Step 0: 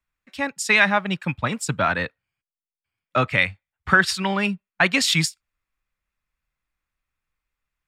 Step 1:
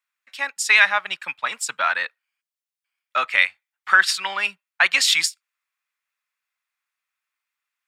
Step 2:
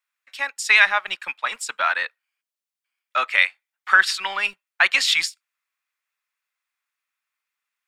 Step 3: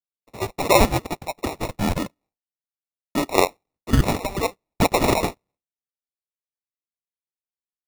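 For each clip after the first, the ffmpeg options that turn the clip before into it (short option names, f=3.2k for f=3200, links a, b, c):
-af "highpass=1.1k,volume=3dB"
-filter_complex "[0:a]acrossover=split=260|1100|5000[a][b][c][d];[a]acrusher=bits=6:dc=4:mix=0:aa=0.000001[e];[d]alimiter=limit=-21.5dB:level=0:latency=1:release=106[f];[e][b][c][f]amix=inputs=4:normalize=0"
-af "aemphasis=mode=production:type=cd,acrusher=samples=28:mix=1:aa=0.000001,agate=range=-33dB:threshold=-50dB:ratio=3:detection=peak,volume=-1.5dB"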